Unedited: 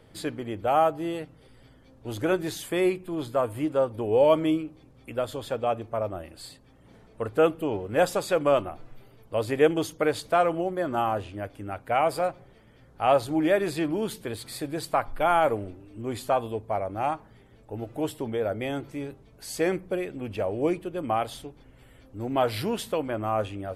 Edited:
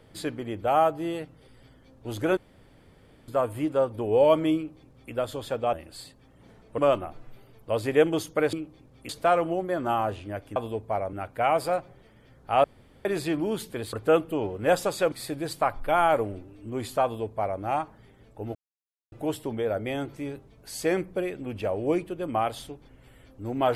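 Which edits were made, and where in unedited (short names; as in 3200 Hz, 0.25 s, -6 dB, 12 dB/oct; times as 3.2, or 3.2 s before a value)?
2.37–3.28 room tone
4.56–5.12 copy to 10.17
5.73–6.18 cut
7.23–8.42 move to 14.44
13.15–13.56 room tone
16.36–16.93 copy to 11.64
17.87 insert silence 0.57 s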